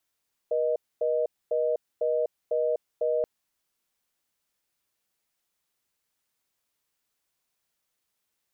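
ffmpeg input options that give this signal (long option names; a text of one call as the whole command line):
ffmpeg -f lavfi -i "aevalsrc='0.0531*(sin(2*PI*480*t)+sin(2*PI*620*t))*clip(min(mod(t,0.5),0.25-mod(t,0.5))/0.005,0,1)':duration=2.73:sample_rate=44100" out.wav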